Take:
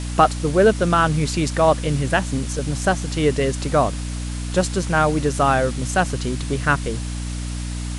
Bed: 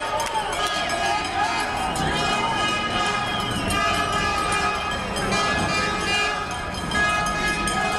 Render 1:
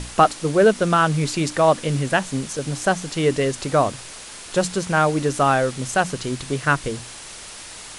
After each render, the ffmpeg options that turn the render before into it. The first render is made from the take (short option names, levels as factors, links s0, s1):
-af "bandreject=f=60:t=h:w=6,bandreject=f=120:t=h:w=6,bandreject=f=180:t=h:w=6,bandreject=f=240:t=h:w=6,bandreject=f=300:t=h:w=6"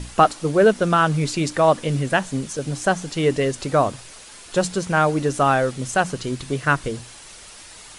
-af "afftdn=nr=6:nf=-38"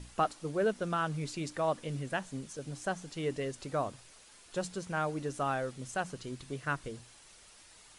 -af "volume=0.178"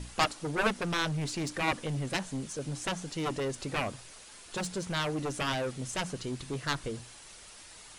-af "aeval=exprs='0.15*(cos(1*acos(clip(val(0)/0.15,-1,1)))-cos(1*PI/2))+0.0668*(cos(7*acos(clip(val(0)/0.15,-1,1)))-cos(7*PI/2))':c=same"